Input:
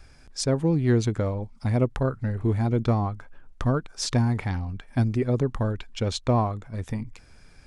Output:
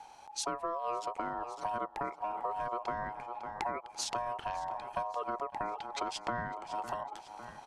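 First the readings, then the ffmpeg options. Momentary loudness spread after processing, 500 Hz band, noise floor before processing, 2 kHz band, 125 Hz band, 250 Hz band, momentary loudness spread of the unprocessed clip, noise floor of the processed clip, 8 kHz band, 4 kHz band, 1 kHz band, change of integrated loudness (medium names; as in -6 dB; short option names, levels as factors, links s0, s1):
5 LU, -11.5 dB, -52 dBFS, -5.0 dB, -30.5 dB, -21.5 dB, 10 LU, -53 dBFS, -6.5 dB, -7.5 dB, +0.5 dB, -11.5 dB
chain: -af "aeval=exprs='val(0)*sin(2*PI*840*n/s)':c=same,aecho=1:1:553|1106|1659|2212:0.112|0.055|0.0269|0.0132,acompressor=threshold=0.0224:ratio=6"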